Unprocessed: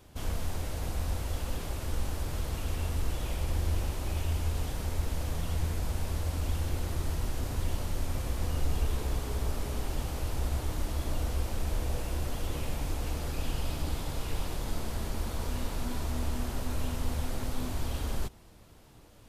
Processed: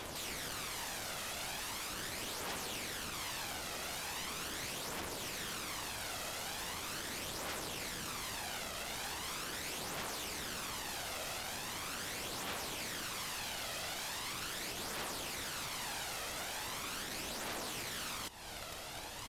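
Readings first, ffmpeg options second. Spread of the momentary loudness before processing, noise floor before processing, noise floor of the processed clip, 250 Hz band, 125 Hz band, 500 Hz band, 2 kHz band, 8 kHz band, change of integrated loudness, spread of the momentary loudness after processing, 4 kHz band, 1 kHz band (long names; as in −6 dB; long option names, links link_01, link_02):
4 LU, −54 dBFS, −45 dBFS, −10.0 dB, −20.5 dB, −6.0 dB, +4.0 dB, +3.0 dB, −5.0 dB, 1 LU, +4.0 dB, −1.0 dB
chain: -filter_complex "[0:a]acrusher=bits=6:mode=log:mix=0:aa=0.000001,acompressor=threshold=-40dB:ratio=12,aeval=exprs='(mod(200*val(0)+1,2)-1)/200':channel_layout=same,highshelf=frequency=2600:gain=10.5,aphaser=in_gain=1:out_gain=1:delay=1.6:decay=0.4:speed=0.4:type=triangular,asplit=2[link_01][link_02];[link_02]highpass=frequency=720:poles=1,volume=20dB,asoftclip=type=tanh:threshold=-29.5dB[link_03];[link_01][link_03]amix=inputs=2:normalize=0,lowpass=frequency=2800:poles=1,volume=-6dB,aresample=32000,aresample=44100,volume=1dB"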